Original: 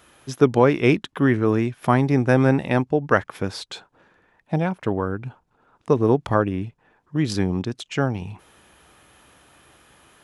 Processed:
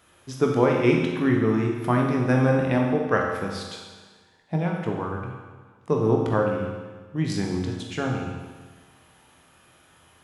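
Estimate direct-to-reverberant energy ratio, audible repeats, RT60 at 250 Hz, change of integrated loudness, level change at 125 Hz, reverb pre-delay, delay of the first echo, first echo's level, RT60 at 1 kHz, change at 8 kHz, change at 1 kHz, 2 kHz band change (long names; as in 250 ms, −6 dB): −0.5 dB, no echo audible, 1.4 s, −2.5 dB, −2.5 dB, 11 ms, no echo audible, no echo audible, 1.4 s, −2.5 dB, −3.0 dB, −3.0 dB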